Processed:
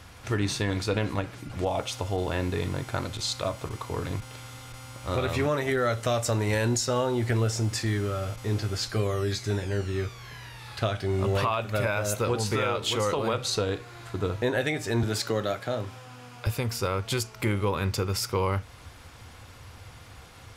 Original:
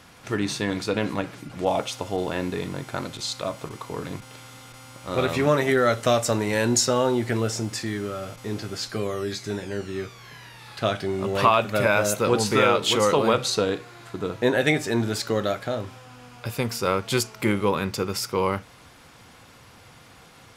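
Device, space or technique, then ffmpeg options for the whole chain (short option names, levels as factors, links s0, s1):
car stereo with a boomy subwoofer: -filter_complex "[0:a]asettb=1/sr,asplit=3[s0][s1][s2];[s0]atrim=end=15.034[s3];[s1]atrim=start=15.03:end=16.47,asetpts=PTS-STARTPTS,afade=t=in:d=0.004:c=qsin,afade=t=out:st=1.436:d=0.004:c=qsin,highpass=f=120:w=0.5412,highpass=f=120:w=1.3066[s4];[s2]atrim=start=16.466[s5];[s3][s4]acrossfade=d=0.004:c1=hsin:c2=qsin[s6];[s6][s5]acrossfade=d=0.004:c1=qsin:c2=hsin,lowshelf=f=120:t=q:w=1.5:g=9,alimiter=limit=0.15:level=0:latency=1:release=331"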